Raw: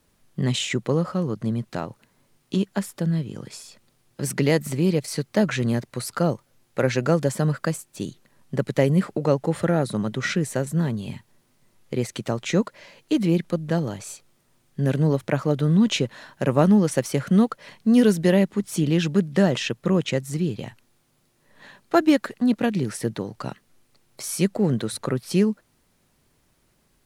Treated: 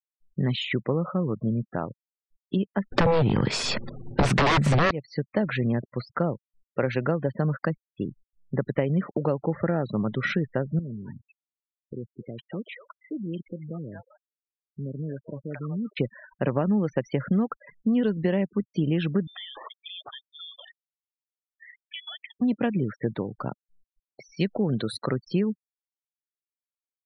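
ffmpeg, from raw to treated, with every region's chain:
ffmpeg -i in.wav -filter_complex "[0:a]asettb=1/sr,asplit=3[link_01][link_02][link_03];[link_01]atrim=end=2.924[link_04];[link_02]atrim=start=2.92:end=4.91,asetpts=PTS-STARTPTS,afade=type=in:duration=0.004:curve=qsin,afade=type=out:start_time=1.986:duration=0.004:curve=qsin,acontrast=75,aeval=exprs='0.708*sin(PI/2*7.08*val(0)/0.708)':channel_layout=same[link_05];[link_03]atrim=start=4.906[link_06];[link_04][link_05]acrossfade=duration=0.004:curve1=hsin:curve2=qsin[link_07];[link_07][link_06]acrossfade=duration=0.004:curve1=qsin:curve2=hsin,asettb=1/sr,asplit=3[link_08][link_09][link_10];[link_08]atrim=end=10.794[link_11];[link_09]atrim=start=10.79:end=15.97,asetpts=PTS-STARTPTS,afade=type=in:duration=0.004:curve=qsin,afade=type=out:start_time=5.176:duration=0.004:curve=qsin,lowshelf=frequency=62:gain=-5.5,acompressor=threshold=-38dB:ratio=2:attack=3.2:release=140:knee=1:detection=peak,acrossover=split=660[link_12][link_13];[link_13]adelay=230[link_14];[link_12][link_14]amix=inputs=2:normalize=0,atrim=end_sample=228438[link_15];[link_10]atrim=start=15.966[link_16];[link_11][link_15]acrossfade=duration=0.004:curve1=hsin:curve2=qsin[link_17];[link_17][link_16]acrossfade=duration=0.004:curve1=qsin:curve2=hsin,asettb=1/sr,asplit=3[link_18][link_19][link_20];[link_18]atrim=end=19.274[link_21];[link_19]atrim=start=19.27:end=22.37,asetpts=PTS-STARTPTS,afade=type=in:duration=0.004:curve=qsin,afade=type=out:start_time=3.096:duration=0.004:curve=qsin,aemphasis=mode=production:type=riaa,acompressor=threshold=-35dB:ratio=4:attack=3.2:release=140:knee=1:detection=peak,lowpass=frequency=3100:width_type=q:width=0.5098,lowpass=frequency=3100:width_type=q:width=0.6013,lowpass=frequency=3100:width_type=q:width=0.9,lowpass=frequency=3100:width_type=q:width=2.563,afreqshift=-3700[link_22];[link_20]atrim=start=22.366[link_23];[link_21][link_22]acrossfade=duration=0.004:curve1=hsin:curve2=qsin[link_24];[link_24][link_23]acrossfade=duration=0.004:curve1=qsin:curve2=hsin,asettb=1/sr,asplit=3[link_25][link_26][link_27];[link_25]atrim=end=24.404[link_28];[link_26]atrim=start=24.4:end=25.3,asetpts=PTS-STARTPTS,afade=type=in:duration=0.004:curve=qsin,afade=type=out:start_time=0.896:duration=0.004:curve=qsin,aemphasis=mode=production:type=75fm,acrusher=bits=8:dc=4:mix=0:aa=0.000001[link_29];[link_27]atrim=start=25.296[link_30];[link_28][link_29]acrossfade=duration=0.004:curve1=hsin:curve2=qsin[link_31];[link_31][link_30]acrossfade=duration=0.004:curve1=qsin:curve2=hsin,lowpass=3300,afftfilt=real='re*gte(hypot(re,im),0.02)':imag='im*gte(hypot(re,im),0.02)':win_size=1024:overlap=0.75,acompressor=threshold=-20dB:ratio=6" out.wav

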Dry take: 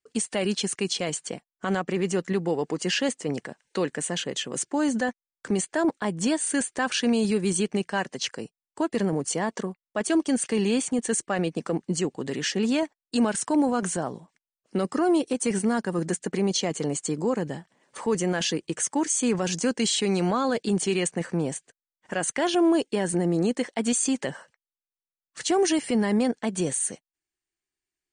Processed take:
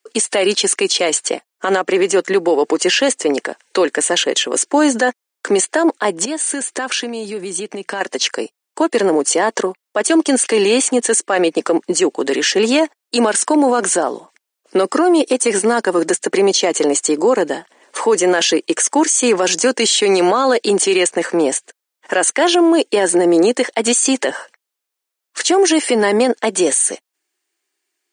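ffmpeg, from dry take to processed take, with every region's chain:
ffmpeg -i in.wav -filter_complex "[0:a]asettb=1/sr,asplit=3[link_01][link_02][link_03];[link_01]atrim=end=6.254[link_04];[link_02]atrim=start=6.25:end=8.01,asetpts=PTS-STARTPTS,afade=type=in:duration=0.004:curve=qsin,afade=type=out:start_time=1.756:duration=0.004:curve=qsin,equalizer=frequency=140:width=1.1:gain=10,acompressor=threshold=-30dB:ratio=16:attack=3.2:release=140:knee=1:detection=peak[link_05];[link_03]atrim=start=8.006[link_06];[link_04][link_05]acrossfade=duration=0.004:curve1=hsin:curve2=qsin[link_07];[link_07][link_06]acrossfade=duration=0.004:curve1=qsin:curve2=hsin,highpass=frequency=310:width=0.5412,highpass=frequency=310:width=1.3066,alimiter=level_in=20dB:limit=-1dB:release=50:level=0:latency=1,volume=-4.5dB" out.wav

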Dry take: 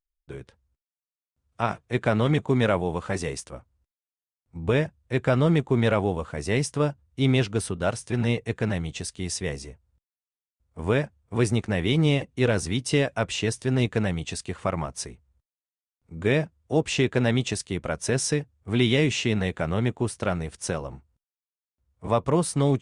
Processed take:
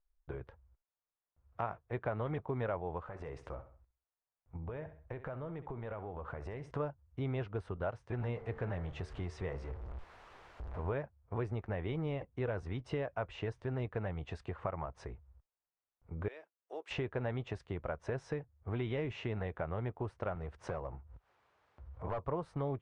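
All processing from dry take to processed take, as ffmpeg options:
ffmpeg -i in.wav -filter_complex "[0:a]asettb=1/sr,asplit=3[link_01][link_02][link_03];[link_01]atrim=end=3.034[link_04];[link_02]atrim=start=3.03:end=6.71,asetpts=PTS-STARTPTS,afade=type=in:duration=0.004:curve=qsin,afade=type=out:start_time=3.676:duration=0.004:curve=qsin,equalizer=frequency=4600:width=1.6:gain=-2.5,acompressor=threshold=-36dB:ratio=6:attack=3.2:release=140:knee=1:detection=peak,aecho=1:1:66|132|198:0.2|0.0638|0.0204,atrim=end_sample=162288[link_05];[link_03]atrim=start=6.706[link_06];[link_04][link_05]acrossfade=duration=0.004:curve1=hsin:curve2=qsin[link_07];[link_07][link_06]acrossfade=duration=0.004:curve1=qsin:curve2=hsin,asettb=1/sr,asplit=3[link_08][link_09][link_10];[link_08]atrim=end=8.194[link_11];[link_09]atrim=start=8.19:end=10.94,asetpts=PTS-STARTPTS,afade=type=in:duration=0.004:curve=qsin,afade=type=out:start_time=2.746:duration=0.004:curve=qsin,aeval=exprs='val(0)+0.5*0.0126*sgn(val(0))':channel_layout=same,bandreject=frequency=75.14:width_type=h:width=4,bandreject=frequency=150.28:width_type=h:width=4,bandreject=frequency=225.42:width_type=h:width=4,bandreject=frequency=300.56:width_type=h:width=4,bandreject=frequency=375.7:width_type=h:width=4,bandreject=frequency=450.84:width_type=h:width=4,bandreject=frequency=525.98:width_type=h:width=4,bandreject=frequency=601.12:width_type=h:width=4,bandreject=frequency=676.26:width_type=h:width=4,bandreject=frequency=751.4:width_type=h:width=4,bandreject=frequency=826.54:width_type=h:width=4,bandreject=frequency=901.68:width_type=h:width=4,bandreject=frequency=976.82:width_type=h:width=4,bandreject=frequency=1051.96:width_type=h:width=4,bandreject=frequency=1127.1:width_type=h:width=4,bandreject=frequency=1202.24:width_type=h:width=4,bandreject=frequency=1277.38:width_type=h:width=4,bandreject=frequency=1352.52:width_type=h:width=4,bandreject=frequency=1427.66:width_type=h:width=4,bandreject=frequency=1502.8:width_type=h:width=4,bandreject=frequency=1577.94:width_type=h:width=4,bandreject=frequency=1653.08:width_type=h:width=4,bandreject=frequency=1728.22:width_type=h:width=4,bandreject=frequency=1803.36:width_type=h:width=4,bandreject=frequency=1878.5:width_type=h:width=4,bandreject=frequency=1953.64:width_type=h:width=4,bandreject=frequency=2028.78:width_type=h:width=4,bandreject=frequency=2103.92:width_type=h:width=4,bandreject=frequency=2179.06:width_type=h:width=4[link_12];[link_10]atrim=start=10.936[link_13];[link_11][link_12]acrossfade=duration=0.004:curve1=hsin:curve2=qsin[link_14];[link_14][link_13]acrossfade=duration=0.004:curve1=qsin:curve2=hsin,asettb=1/sr,asplit=3[link_15][link_16][link_17];[link_15]atrim=end=16.284[link_18];[link_16]atrim=start=16.28:end=16.91,asetpts=PTS-STARTPTS,afade=type=in:duration=0.004:curve=qsin,afade=type=out:start_time=0.626:duration=0.004:curve=qsin,highpass=frequency=340:width_type=q:width=2.4,aderivative,asoftclip=type=hard:threshold=-27.5dB[link_19];[link_17]atrim=start=16.906[link_20];[link_18][link_19]acrossfade=duration=0.004:curve1=hsin:curve2=qsin[link_21];[link_21][link_20]acrossfade=duration=0.004:curve1=qsin:curve2=hsin,asettb=1/sr,asplit=3[link_22][link_23][link_24];[link_22]atrim=end=20.354[link_25];[link_23]atrim=start=20.35:end=22.27,asetpts=PTS-STARTPTS,afade=type=in:duration=0.004:curve=qsin,afade=type=out:start_time=1.916:duration=0.004:curve=qsin,highpass=frequency=50:width=0.5412,highpass=frequency=50:width=1.3066,acompressor=mode=upward:threshold=-41dB:ratio=2.5:attack=3.2:release=140:knee=2.83:detection=peak,asoftclip=type=hard:threshold=-23.5dB[link_26];[link_24]atrim=start=22.266[link_27];[link_25][link_26]acrossfade=duration=0.004:curve1=hsin:curve2=qsin[link_28];[link_28][link_27]acrossfade=duration=0.004:curve1=qsin:curve2=hsin,lowpass=1100,equalizer=frequency=220:width_type=o:width=1.9:gain=-13.5,acompressor=threshold=-51dB:ratio=2.5,volume=9dB" out.wav

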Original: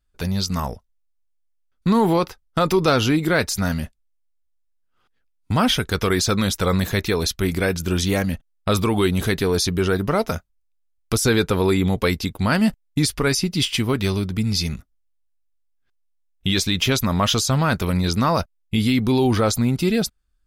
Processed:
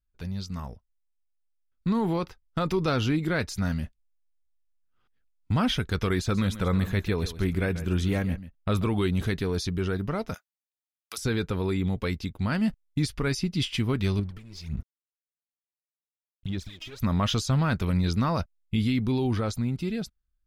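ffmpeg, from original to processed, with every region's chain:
ffmpeg -i in.wav -filter_complex "[0:a]asettb=1/sr,asplit=3[link_01][link_02][link_03];[link_01]atrim=end=6.194[link_04];[link_02]atrim=start=6.19:end=8.87,asetpts=PTS-STARTPTS,afade=type=in:duration=0.004:curve=qsin,afade=type=out:start_time=2.676:duration=0.004:curve=qsin,equalizer=frequency=5200:width=1.4:gain=-6.5,aecho=1:1:137:0.2,atrim=end_sample=118188[link_05];[link_03]atrim=start=8.866[link_06];[link_04][link_05]acrossfade=duration=0.004:curve1=hsin:curve2=qsin[link_07];[link_07][link_06]acrossfade=duration=0.004:curve1=qsin:curve2=hsin,asettb=1/sr,asplit=3[link_08][link_09][link_10];[link_08]atrim=end=10.344[link_11];[link_09]atrim=start=10.34:end=11.18,asetpts=PTS-STARTPTS,afade=type=in:duration=0.004:curve=qsin,afade=type=out:start_time=0.836:duration=0.004:curve=qsin,highpass=940,aemphasis=mode=production:type=50kf[link_12];[link_10]atrim=start=11.176[link_13];[link_11][link_12]acrossfade=duration=0.004:curve1=hsin:curve2=qsin[link_14];[link_14][link_13]acrossfade=duration=0.004:curve1=qsin:curve2=hsin,asettb=1/sr,asplit=3[link_15][link_16][link_17];[link_15]atrim=end=14.194[link_18];[link_16]atrim=start=14.19:end=17,asetpts=PTS-STARTPTS,afade=type=in:duration=0.004:curve=qsin,afade=type=out:start_time=2.806:duration=0.004:curve=qsin,acompressor=threshold=-33dB:ratio=8:attack=3.2:release=140:knee=1:detection=peak,aphaser=in_gain=1:out_gain=1:delay=3.2:decay=0.79:speed=1.7:type=sinusoidal,aeval=exprs='sgn(val(0))*max(abs(val(0))-0.00531,0)':channel_layout=same[link_19];[link_17]atrim=start=16.996[link_20];[link_18][link_19]acrossfade=duration=0.004:curve1=hsin:curve2=qsin[link_21];[link_21][link_20]acrossfade=duration=0.004:curve1=qsin:curve2=hsin,dynaudnorm=framelen=330:gausssize=11:maxgain=11.5dB,lowpass=frequency=2100:poles=1,equalizer=frequency=660:width_type=o:width=2.8:gain=-7,volume=-8dB" out.wav

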